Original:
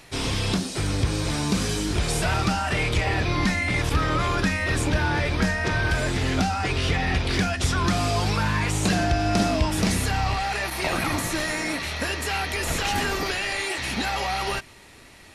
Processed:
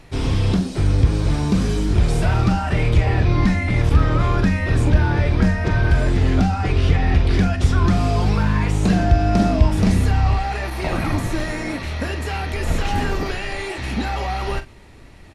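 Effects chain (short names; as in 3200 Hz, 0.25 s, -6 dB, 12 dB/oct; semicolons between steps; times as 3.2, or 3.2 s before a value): tilt -2.5 dB/oct; doubler 43 ms -11 dB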